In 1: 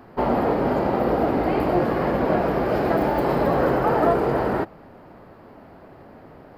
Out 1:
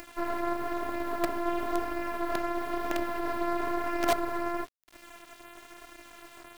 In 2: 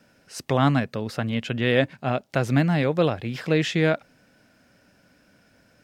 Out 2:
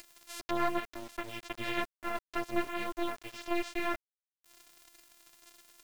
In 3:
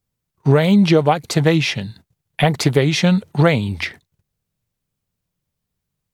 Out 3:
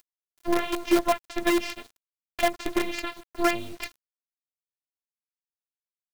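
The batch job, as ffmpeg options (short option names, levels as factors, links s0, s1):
-filter_complex "[0:a]acrossover=split=3500[s0][s1];[s1]acompressor=threshold=0.00501:ratio=4:attack=1:release=60[s2];[s0][s2]amix=inputs=2:normalize=0,bandreject=f=60:t=h:w=6,bandreject=f=120:t=h:w=6,bandreject=f=180:t=h:w=6,bandreject=f=240:t=h:w=6,bandreject=f=300:t=h:w=6,bandreject=f=360:t=h:w=6,bandreject=f=420:t=h:w=6,acompressor=mode=upward:threshold=0.0794:ratio=2.5,afftfilt=real='hypot(re,im)*cos(PI*b)':imag='0':win_size=512:overlap=0.75,aeval=exprs='sgn(val(0))*max(abs(val(0))-0.02,0)':c=same,flanger=delay=3.3:depth=5.4:regen=-25:speed=1:shape=sinusoidal,acrusher=bits=5:dc=4:mix=0:aa=0.000001"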